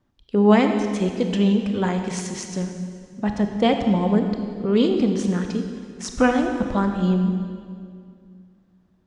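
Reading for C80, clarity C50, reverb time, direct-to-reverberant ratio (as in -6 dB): 6.5 dB, 5.5 dB, 2.2 s, 5.0 dB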